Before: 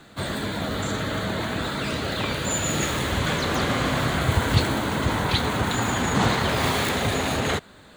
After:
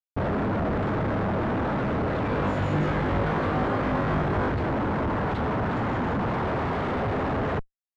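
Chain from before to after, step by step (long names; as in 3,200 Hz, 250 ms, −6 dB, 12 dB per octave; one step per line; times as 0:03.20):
comparator with hysteresis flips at −33.5 dBFS
low-pass filter 1,300 Hz 12 dB per octave
0:02.29–0:04.49: flutter between parallel walls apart 3.4 metres, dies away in 0.24 s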